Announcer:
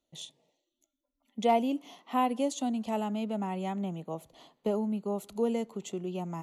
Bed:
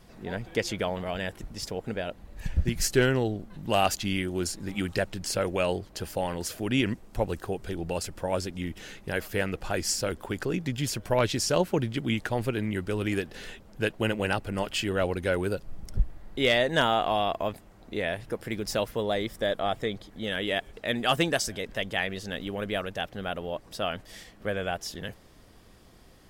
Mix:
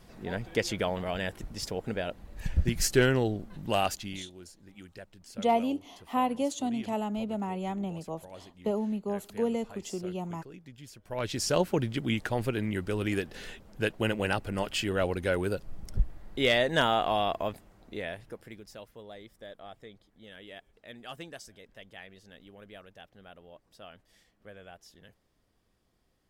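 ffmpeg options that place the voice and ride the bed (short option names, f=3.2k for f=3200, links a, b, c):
-filter_complex "[0:a]adelay=4000,volume=0dB[a];[1:a]volume=17dB,afade=t=out:st=3.55:d=0.73:silence=0.11885,afade=t=in:st=11.04:d=0.48:silence=0.133352,afade=t=out:st=17.31:d=1.38:silence=0.141254[b];[a][b]amix=inputs=2:normalize=0"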